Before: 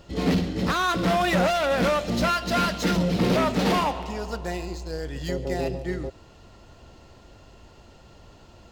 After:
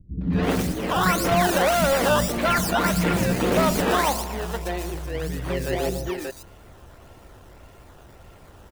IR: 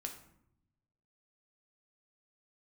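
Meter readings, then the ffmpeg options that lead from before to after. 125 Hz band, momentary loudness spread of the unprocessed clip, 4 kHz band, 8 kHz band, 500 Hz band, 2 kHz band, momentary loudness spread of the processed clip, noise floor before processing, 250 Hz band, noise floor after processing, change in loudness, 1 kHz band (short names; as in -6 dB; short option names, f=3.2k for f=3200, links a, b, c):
+1.5 dB, 11 LU, +1.0 dB, +8.0 dB, +2.5 dB, +3.0 dB, 10 LU, -51 dBFS, +0.5 dB, -48 dBFS, +2.0 dB, +2.5 dB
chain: -filter_complex "[0:a]acrusher=samples=14:mix=1:aa=0.000001:lfo=1:lforange=14:lforate=1.7,acrossover=split=230|4200[a][b][c];[b]adelay=210[d];[c]adelay=330[e];[a][d][e]amix=inputs=3:normalize=0,volume=3dB"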